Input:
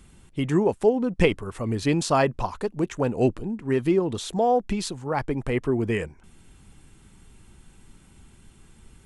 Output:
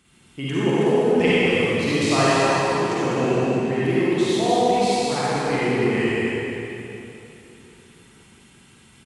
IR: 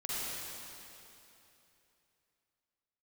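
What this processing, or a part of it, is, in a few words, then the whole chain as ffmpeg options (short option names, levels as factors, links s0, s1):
PA in a hall: -filter_complex "[0:a]highpass=110,equalizer=f=2800:t=o:w=2.2:g=6,aecho=1:1:198:0.562[s0];[1:a]atrim=start_sample=2205[s1];[s0][s1]afir=irnorm=-1:irlink=0,volume=0.794"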